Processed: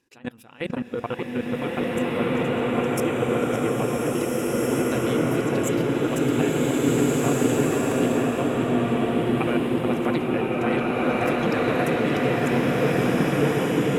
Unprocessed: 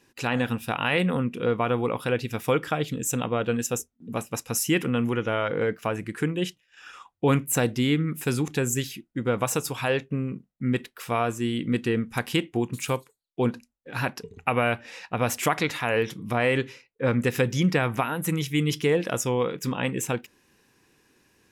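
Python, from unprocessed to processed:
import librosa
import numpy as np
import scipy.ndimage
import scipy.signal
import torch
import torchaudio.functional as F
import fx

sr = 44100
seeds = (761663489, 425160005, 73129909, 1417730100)

y = fx.peak_eq(x, sr, hz=330.0, db=6.0, octaves=0.98)
y = fx.stretch_grains(y, sr, factor=0.65, grain_ms=70.0)
y = fx.echo_filtered(y, sr, ms=577, feedback_pct=82, hz=2900.0, wet_db=-4.0)
y = fx.level_steps(y, sr, step_db=23)
y = fx.rev_bloom(y, sr, seeds[0], attack_ms=1760, drr_db=-7.5)
y = y * 10.0 ** (-3.5 / 20.0)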